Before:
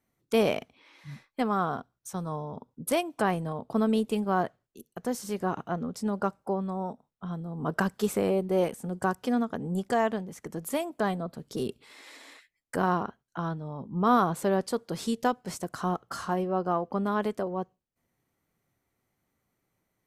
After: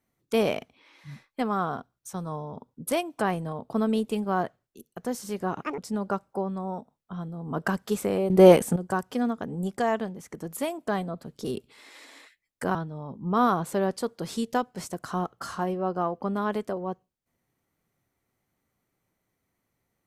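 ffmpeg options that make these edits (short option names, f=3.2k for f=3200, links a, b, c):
-filter_complex "[0:a]asplit=6[a][b][c][d][e][f];[a]atrim=end=5.624[g];[b]atrim=start=5.62:end=5.9,asetpts=PTS-STARTPTS,asetrate=77175,aresample=44100[h];[c]atrim=start=5.896:end=8.422[i];[d]atrim=start=8.418:end=8.882,asetpts=PTS-STARTPTS,volume=12dB[j];[e]atrim=start=8.878:end=12.872[k];[f]atrim=start=13.448[l];[g][h]acrossfade=d=0.004:c1=hsin:c2=hsin[m];[m][i]acrossfade=d=0.004:c1=hsin:c2=hsin[n];[n][j]acrossfade=d=0.004:c1=hsin:c2=hsin[o];[o][k]acrossfade=d=0.004:c1=hsin:c2=hsin[p];[p][l]acrossfade=d=0.004:c1=hsin:c2=hsin"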